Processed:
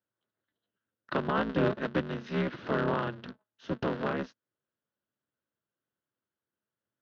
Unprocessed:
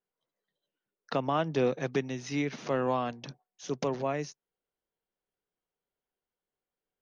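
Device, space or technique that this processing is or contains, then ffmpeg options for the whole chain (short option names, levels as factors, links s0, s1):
ring modulator pedal into a guitar cabinet: -af "aeval=exprs='val(0)*sgn(sin(2*PI*110*n/s))':c=same,highpass=95,equalizer=f=130:t=q:w=4:g=4,equalizer=f=210:t=q:w=4:g=7,equalizer=f=780:t=q:w=4:g=-7,equalizer=f=1500:t=q:w=4:g=6,equalizer=f=2300:t=q:w=4:g=-7,lowpass=f=3600:w=0.5412,lowpass=f=3600:w=1.3066"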